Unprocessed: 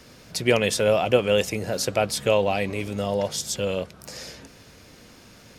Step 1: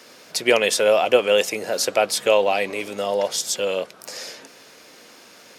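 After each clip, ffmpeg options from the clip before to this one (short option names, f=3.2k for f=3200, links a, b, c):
-af "highpass=380,volume=4.5dB"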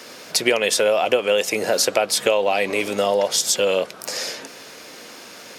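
-af "acompressor=threshold=-22dB:ratio=6,volume=7dB"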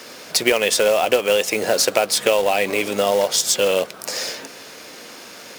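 -af "acrusher=bits=3:mode=log:mix=0:aa=0.000001,volume=1dB"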